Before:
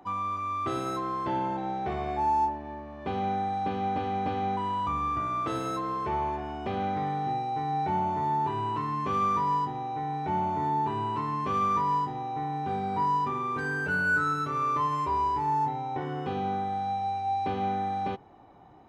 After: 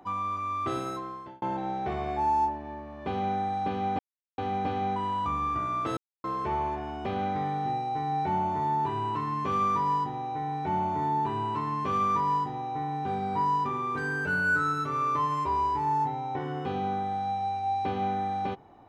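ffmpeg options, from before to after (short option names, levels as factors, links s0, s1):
-filter_complex "[0:a]asplit=5[s0][s1][s2][s3][s4];[s0]atrim=end=1.42,asetpts=PTS-STARTPTS,afade=t=out:st=0.73:d=0.69[s5];[s1]atrim=start=1.42:end=3.99,asetpts=PTS-STARTPTS,afade=t=in:d=0.004:c=hsin,afade=t=out:st=2.566:d=0.004:c=hsin,apad=pad_dur=0.39[s6];[s2]atrim=start=3.99:end=5.58,asetpts=PTS-STARTPTS,afade=t=in:d=0.004:c=hsin,afade=t=out:st=1.586:d=0.004:c=hsin[s7];[s3]atrim=start=5.58:end=5.85,asetpts=PTS-STARTPTS,volume=0[s8];[s4]atrim=start=5.85,asetpts=PTS-STARTPTS,afade=t=in:d=0.004:c=hsin[s9];[s5][s6][s7][s8][s9]concat=n=5:v=0:a=1"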